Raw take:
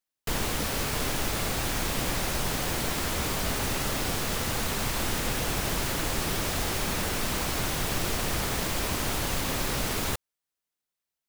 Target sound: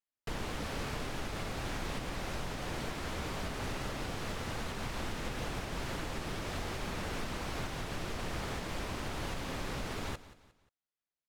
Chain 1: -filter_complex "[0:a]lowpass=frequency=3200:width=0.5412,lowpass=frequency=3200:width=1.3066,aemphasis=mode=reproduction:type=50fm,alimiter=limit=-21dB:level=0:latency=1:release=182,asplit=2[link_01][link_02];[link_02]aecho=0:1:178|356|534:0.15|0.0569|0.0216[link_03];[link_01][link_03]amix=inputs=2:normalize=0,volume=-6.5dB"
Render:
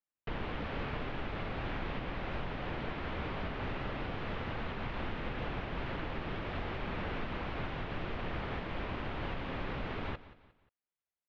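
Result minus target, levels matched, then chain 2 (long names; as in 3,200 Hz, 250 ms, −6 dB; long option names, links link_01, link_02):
4,000 Hz band −4.0 dB
-filter_complex "[0:a]aemphasis=mode=reproduction:type=50fm,alimiter=limit=-21dB:level=0:latency=1:release=182,asplit=2[link_01][link_02];[link_02]aecho=0:1:178|356|534:0.15|0.0569|0.0216[link_03];[link_01][link_03]amix=inputs=2:normalize=0,volume=-6.5dB"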